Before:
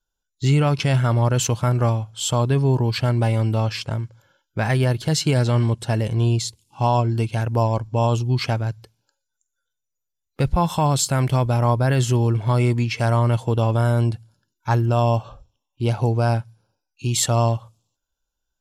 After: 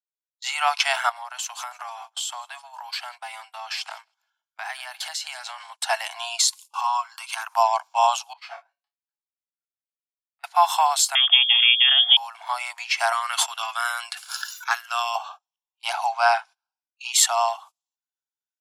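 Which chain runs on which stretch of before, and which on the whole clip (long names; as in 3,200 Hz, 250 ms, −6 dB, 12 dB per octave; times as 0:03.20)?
0:01.09–0:05.76: high-pass filter 630 Hz 6 dB per octave + repeating echo 159 ms, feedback 39%, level −23 dB + downward compressor 16 to 1, threshold −33 dBFS
0:06.39–0:07.55: downward compressor 12 to 1, threshold −29 dBFS + high-pass with resonance 1,100 Hz, resonance Q 4.1 + high-shelf EQ 3,600 Hz +10.5 dB
0:08.33–0:10.44: low-pass filter 1,800 Hz 6 dB per octave + tuned comb filter 140 Hz, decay 0.27 s, mix 90% + micro pitch shift up and down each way 39 cents
0:11.15–0:12.17: transient designer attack +8 dB, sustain −1 dB + voice inversion scrambler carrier 3,400 Hz
0:13.12–0:15.15: flat-topped bell 740 Hz −13 dB 1 octave + level that may fall only so fast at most 48 dB per second
0:16.05–0:17.13: low-pass filter 6,800 Hz + parametric band 1,800 Hz +3.5 dB 1.8 octaves
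whole clip: Butterworth high-pass 690 Hz 96 dB per octave; noise gate −48 dBFS, range −23 dB; automatic gain control gain up to 10 dB; level −2 dB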